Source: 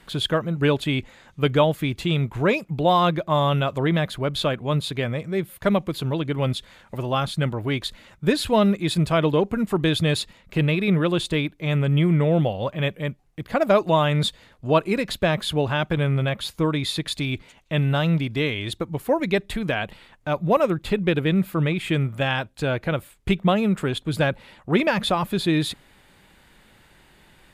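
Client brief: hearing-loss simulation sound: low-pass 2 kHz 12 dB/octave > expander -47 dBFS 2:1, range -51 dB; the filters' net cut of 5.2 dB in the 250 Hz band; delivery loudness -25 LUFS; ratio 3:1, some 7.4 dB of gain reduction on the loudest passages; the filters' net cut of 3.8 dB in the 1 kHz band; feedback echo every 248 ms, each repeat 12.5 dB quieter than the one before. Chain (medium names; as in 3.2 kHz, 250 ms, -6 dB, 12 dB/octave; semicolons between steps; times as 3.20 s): peaking EQ 250 Hz -8.5 dB; peaking EQ 1 kHz -4 dB; compression 3:1, threshold -26 dBFS; low-pass 2 kHz 12 dB/octave; feedback delay 248 ms, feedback 24%, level -12.5 dB; expander -47 dBFS 2:1, range -51 dB; trim +6 dB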